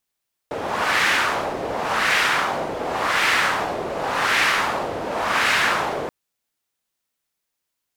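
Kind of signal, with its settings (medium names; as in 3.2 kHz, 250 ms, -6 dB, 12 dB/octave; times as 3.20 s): wind-like swept noise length 5.58 s, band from 540 Hz, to 1.9 kHz, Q 1.5, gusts 5, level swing 9 dB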